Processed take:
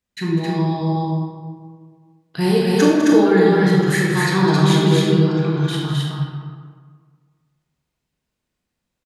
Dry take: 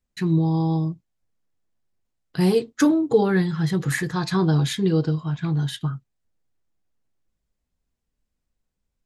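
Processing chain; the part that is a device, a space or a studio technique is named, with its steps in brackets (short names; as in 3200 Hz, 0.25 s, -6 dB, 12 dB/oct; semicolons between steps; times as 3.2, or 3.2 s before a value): stadium PA (HPF 130 Hz 6 dB/oct; bell 2600 Hz +3.5 dB 1.8 oct; loudspeakers at several distances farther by 69 m -10 dB, 91 m -2 dB; reverb RT60 1.7 s, pre-delay 23 ms, DRR -2 dB)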